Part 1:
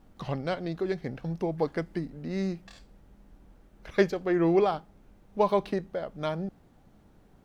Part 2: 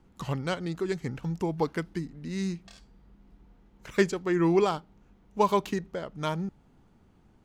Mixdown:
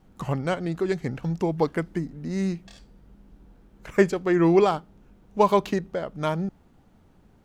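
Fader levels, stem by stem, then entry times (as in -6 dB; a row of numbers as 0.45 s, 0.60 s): -2.0 dB, 0.0 dB; 0.00 s, 0.00 s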